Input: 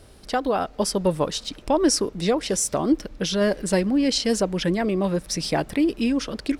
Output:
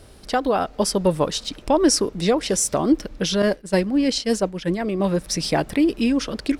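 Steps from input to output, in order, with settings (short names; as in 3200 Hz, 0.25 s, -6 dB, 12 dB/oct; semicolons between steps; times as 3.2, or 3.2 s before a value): 3.42–5 expander -18 dBFS; gain +2.5 dB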